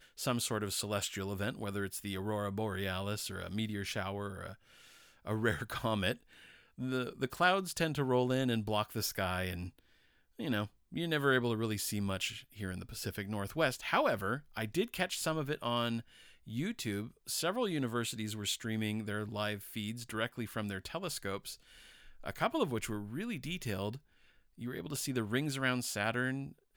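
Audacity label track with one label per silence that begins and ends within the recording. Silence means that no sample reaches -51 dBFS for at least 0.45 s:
9.790000	10.390000	silence
23.980000	24.580000	silence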